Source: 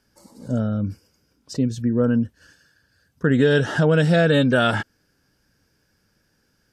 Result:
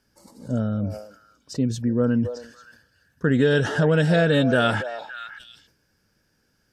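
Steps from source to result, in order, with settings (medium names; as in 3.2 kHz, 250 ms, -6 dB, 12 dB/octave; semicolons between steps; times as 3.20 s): repeats whose band climbs or falls 282 ms, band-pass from 690 Hz, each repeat 1.4 oct, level -7.5 dB; decay stretcher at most 92 dB/s; trim -2 dB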